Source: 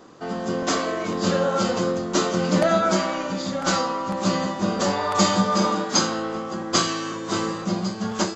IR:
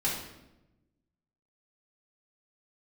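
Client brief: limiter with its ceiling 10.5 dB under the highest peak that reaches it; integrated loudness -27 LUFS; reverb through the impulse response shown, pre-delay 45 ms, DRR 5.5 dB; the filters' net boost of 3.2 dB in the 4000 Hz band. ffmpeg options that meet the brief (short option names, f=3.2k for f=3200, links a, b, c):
-filter_complex "[0:a]equalizer=f=4k:t=o:g=4,alimiter=limit=-14dB:level=0:latency=1,asplit=2[a][b];[1:a]atrim=start_sample=2205,adelay=45[c];[b][c]afir=irnorm=-1:irlink=0,volume=-13dB[d];[a][d]amix=inputs=2:normalize=0,volume=-3.5dB"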